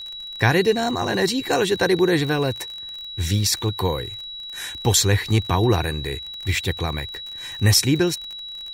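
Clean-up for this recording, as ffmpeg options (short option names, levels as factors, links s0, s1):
-af "adeclick=t=4,bandreject=f=3900:w=30,agate=range=0.0891:threshold=0.0447"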